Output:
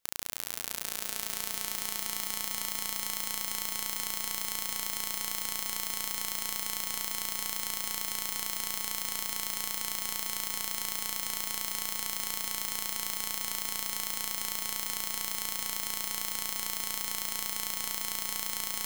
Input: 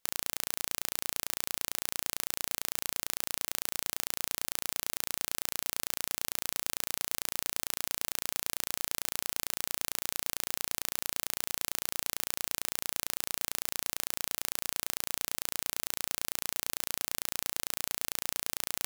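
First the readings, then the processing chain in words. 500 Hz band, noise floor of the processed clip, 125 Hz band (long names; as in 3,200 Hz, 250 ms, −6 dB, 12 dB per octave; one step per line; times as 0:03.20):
−2.5 dB, −38 dBFS, −1.5 dB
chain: echo that builds up and dies away 163 ms, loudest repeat 5, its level −8.5 dB
level −2 dB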